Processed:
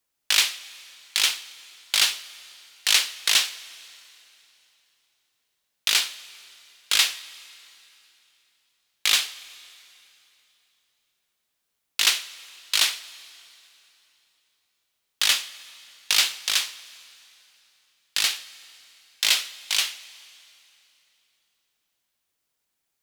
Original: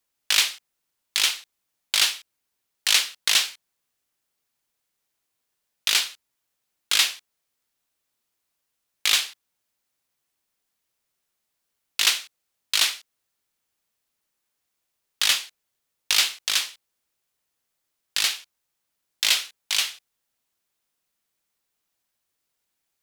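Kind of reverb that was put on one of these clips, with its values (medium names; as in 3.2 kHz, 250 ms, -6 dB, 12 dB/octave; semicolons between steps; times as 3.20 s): plate-style reverb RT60 3.2 s, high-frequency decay 0.95×, DRR 16.5 dB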